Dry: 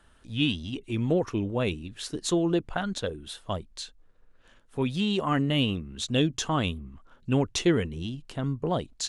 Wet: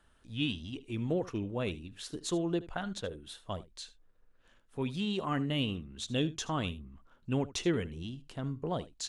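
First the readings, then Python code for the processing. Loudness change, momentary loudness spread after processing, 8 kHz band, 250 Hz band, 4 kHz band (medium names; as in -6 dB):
-7.0 dB, 12 LU, -7.0 dB, -7.0 dB, -7.0 dB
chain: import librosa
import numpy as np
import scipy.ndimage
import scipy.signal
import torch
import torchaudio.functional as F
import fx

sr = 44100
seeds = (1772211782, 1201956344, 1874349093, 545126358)

y = x + 10.0 ** (-17.5 / 20.0) * np.pad(x, (int(76 * sr / 1000.0), 0))[:len(x)]
y = F.gain(torch.from_numpy(y), -7.0).numpy()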